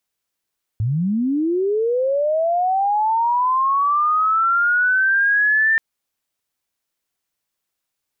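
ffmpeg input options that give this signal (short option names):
-f lavfi -i "aevalsrc='pow(10,(-17+4*t/4.98)/20)*sin(2*PI*(100*t+1700*t*t/(2*4.98)))':d=4.98:s=44100"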